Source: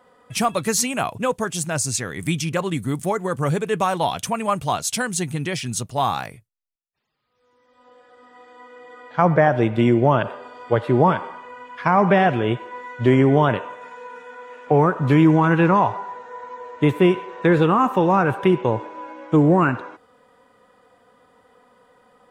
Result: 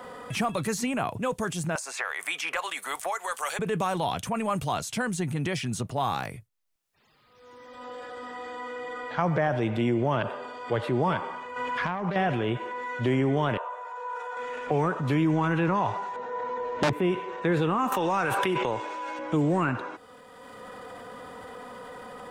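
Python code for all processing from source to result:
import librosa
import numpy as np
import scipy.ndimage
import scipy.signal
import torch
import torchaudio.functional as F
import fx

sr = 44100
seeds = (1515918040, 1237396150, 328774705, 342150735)

y = fx.chain(x, sr, fx.highpass(hz=700.0, slope=24),
    fx.band_squash(depth_pct=100), at=(1.75, 3.59))
y = fx.chain(y, sr, fx.self_delay(depth_ms=0.12),
    fx.over_compress(threshold_db=-23.0, ratio=-0.5), at=(11.56, 12.16))
y = fx.chain(y, sr, fx.highpass(hz=550.0, slope=24),
    fx.high_shelf_res(hz=1500.0, db=-8.0, q=1.5), at=(13.57, 14.37))
y = fx.chain(y, sr, fx.tilt_shelf(db=6.5, hz=1300.0),
    fx.overflow_wrap(gain_db=5.5),
    fx.bandpass_edges(low_hz=120.0, high_hz=5600.0), at=(16.16, 16.93))
y = fx.chain(y, sr, fx.highpass(hz=480.0, slope=6),
    fx.high_shelf(hz=2600.0, db=11.5),
    fx.pre_swell(db_per_s=21.0), at=(17.92, 19.19))
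y = fx.transient(y, sr, attack_db=-4, sustain_db=5)
y = fx.band_squash(y, sr, depth_pct=70)
y = y * librosa.db_to_amplitude(-7.5)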